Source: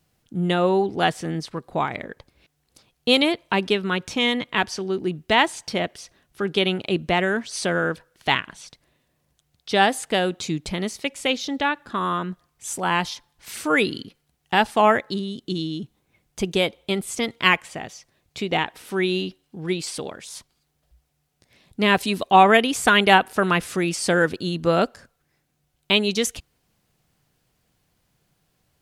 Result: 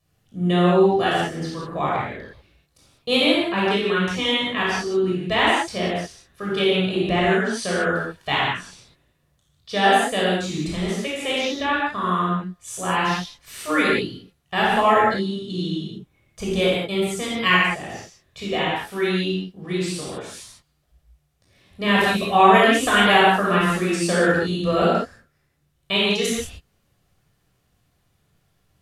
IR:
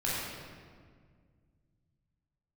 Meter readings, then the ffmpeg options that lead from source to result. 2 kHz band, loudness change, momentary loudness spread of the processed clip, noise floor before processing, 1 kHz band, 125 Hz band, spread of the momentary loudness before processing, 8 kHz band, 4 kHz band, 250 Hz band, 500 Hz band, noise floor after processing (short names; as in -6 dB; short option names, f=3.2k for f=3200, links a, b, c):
+1.5 dB, +1.5 dB, 14 LU, -72 dBFS, +1.5 dB, +3.5 dB, 15 LU, -1.0 dB, +1.0 dB, +2.0 dB, +2.0 dB, -67 dBFS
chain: -filter_complex "[1:a]atrim=start_sample=2205,afade=t=out:st=0.2:d=0.01,atrim=end_sample=9261,asetrate=32193,aresample=44100[a];[0:a][a]afir=irnorm=-1:irlink=0,volume=-7.5dB"